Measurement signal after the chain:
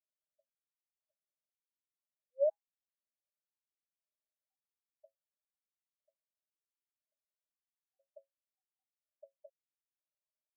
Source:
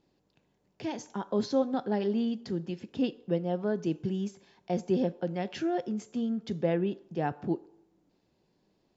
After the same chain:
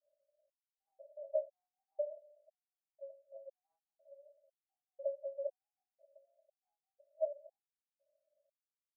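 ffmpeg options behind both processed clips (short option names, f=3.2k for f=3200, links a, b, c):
-af "asuperpass=centerf=600:order=20:qfactor=5.6,afftfilt=real='re*gt(sin(2*PI*1*pts/sr)*(1-2*mod(floor(b*sr/1024/770),2)),0)':imag='im*gt(sin(2*PI*1*pts/sr)*(1-2*mod(floor(b*sr/1024/770),2)),0)':win_size=1024:overlap=0.75,volume=5.5dB"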